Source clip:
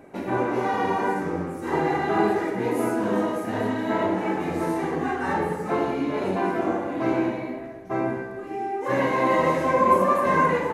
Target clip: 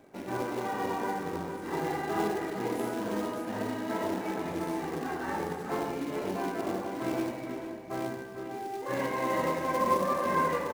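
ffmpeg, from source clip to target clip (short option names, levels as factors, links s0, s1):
-filter_complex "[0:a]acrossover=split=920[s0][s1];[s0]acrusher=bits=3:mode=log:mix=0:aa=0.000001[s2];[s2][s1]amix=inputs=2:normalize=0,asplit=2[s3][s4];[s4]adelay=449,volume=0.447,highshelf=f=4000:g=-10.1[s5];[s3][s5]amix=inputs=2:normalize=0,volume=0.355"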